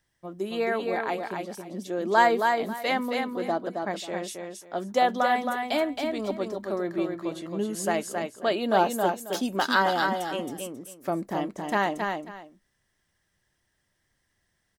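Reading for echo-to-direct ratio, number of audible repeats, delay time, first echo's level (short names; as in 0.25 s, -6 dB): -4.5 dB, 2, 0.27 s, -4.5 dB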